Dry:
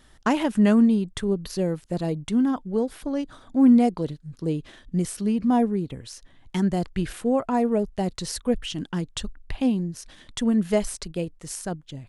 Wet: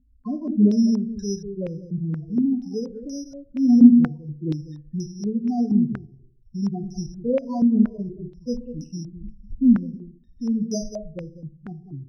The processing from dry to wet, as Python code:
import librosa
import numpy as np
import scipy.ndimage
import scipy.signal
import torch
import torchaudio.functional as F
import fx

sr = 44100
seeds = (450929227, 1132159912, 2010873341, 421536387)

y = fx.low_shelf(x, sr, hz=280.0, db=7.5)
y = fx.cheby_harmonics(y, sr, harmonics=(3, 5, 7), levels_db=(-18, -28, -35), full_scale_db=-4.5)
y = fx.spec_topn(y, sr, count=4)
y = y + 10.0 ** (-10.0 / 20.0) * np.pad(y, (int(195 * sr / 1000.0), 0))[:len(y)]
y = fx.rev_fdn(y, sr, rt60_s=0.59, lf_ratio=1.05, hf_ratio=0.85, size_ms=41.0, drr_db=7.0)
y = np.repeat(scipy.signal.resample_poly(y, 1, 8), 8)[:len(y)]
y = fx.filter_held_lowpass(y, sr, hz=4.2, low_hz=240.0, high_hz=6100.0)
y = F.gain(torch.from_numpy(y), -5.5).numpy()